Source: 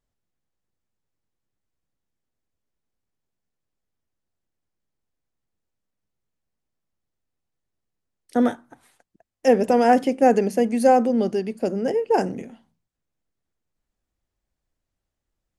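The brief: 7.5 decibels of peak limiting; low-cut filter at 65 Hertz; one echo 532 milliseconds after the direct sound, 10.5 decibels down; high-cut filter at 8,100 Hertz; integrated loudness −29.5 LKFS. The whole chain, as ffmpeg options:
ffmpeg -i in.wav -af "highpass=65,lowpass=8100,alimiter=limit=-12dB:level=0:latency=1,aecho=1:1:532:0.299,volume=-6dB" out.wav

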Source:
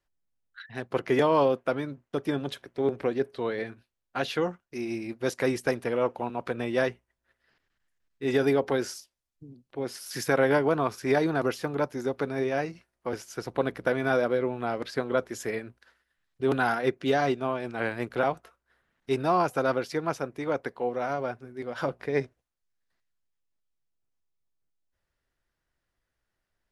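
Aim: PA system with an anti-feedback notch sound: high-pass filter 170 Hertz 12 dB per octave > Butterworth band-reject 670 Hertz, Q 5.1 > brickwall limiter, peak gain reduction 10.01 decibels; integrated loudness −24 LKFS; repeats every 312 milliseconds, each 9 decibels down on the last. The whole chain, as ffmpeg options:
ffmpeg -i in.wav -af "highpass=170,asuperstop=centerf=670:order=8:qfactor=5.1,aecho=1:1:312|624|936|1248:0.355|0.124|0.0435|0.0152,volume=9.5dB,alimiter=limit=-13.5dB:level=0:latency=1" out.wav

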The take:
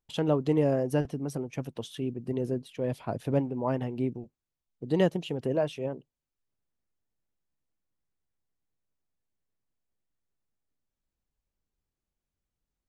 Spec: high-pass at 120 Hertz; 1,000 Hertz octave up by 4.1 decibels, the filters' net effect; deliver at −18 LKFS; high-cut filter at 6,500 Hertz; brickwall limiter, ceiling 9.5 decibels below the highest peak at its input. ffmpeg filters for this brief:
ffmpeg -i in.wav -af "highpass=120,lowpass=6500,equalizer=frequency=1000:width_type=o:gain=5.5,volume=15dB,alimiter=limit=-6dB:level=0:latency=1" out.wav

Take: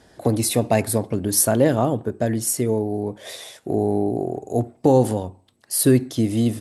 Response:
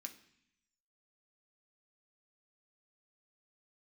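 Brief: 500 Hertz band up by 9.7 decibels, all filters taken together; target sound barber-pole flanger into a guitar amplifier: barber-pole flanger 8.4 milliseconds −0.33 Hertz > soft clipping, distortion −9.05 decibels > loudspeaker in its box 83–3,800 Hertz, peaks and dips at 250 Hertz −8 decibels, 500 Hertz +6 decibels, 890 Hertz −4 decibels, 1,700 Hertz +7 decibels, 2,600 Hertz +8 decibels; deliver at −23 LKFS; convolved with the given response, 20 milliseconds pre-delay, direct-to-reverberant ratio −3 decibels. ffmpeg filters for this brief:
-filter_complex "[0:a]equalizer=frequency=500:width_type=o:gain=8,asplit=2[link_01][link_02];[1:a]atrim=start_sample=2205,adelay=20[link_03];[link_02][link_03]afir=irnorm=-1:irlink=0,volume=8dB[link_04];[link_01][link_04]amix=inputs=2:normalize=0,asplit=2[link_05][link_06];[link_06]adelay=8.4,afreqshift=-0.33[link_07];[link_05][link_07]amix=inputs=2:normalize=1,asoftclip=threshold=-13.5dB,highpass=83,equalizer=frequency=250:width_type=q:width=4:gain=-8,equalizer=frequency=500:width_type=q:width=4:gain=6,equalizer=frequency=890:width_type=q:width=4:gain=-4,equalizer=frequency=1700:width_type=q:width=4:gain=7,equalizer=frequency=2600:width_type=q:width=4:gain=8,lowpass=frequency=3800:width=0.5412,lowpass=frequency=3800:width=1.3066,volume=-2.5dB"

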